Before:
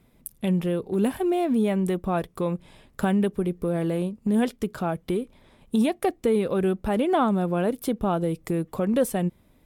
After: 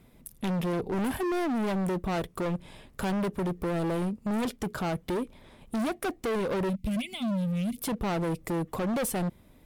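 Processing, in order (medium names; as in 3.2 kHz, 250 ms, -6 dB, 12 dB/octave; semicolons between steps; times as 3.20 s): 0.73–1.16 s: bass shelf 190 Hz +7 dB; 6.69–7.77 s: time-frequency box 250–2000 Hz -28 dB; hard clipper -29.5 dBFS, distortion -6 dB; trim +2.5 dB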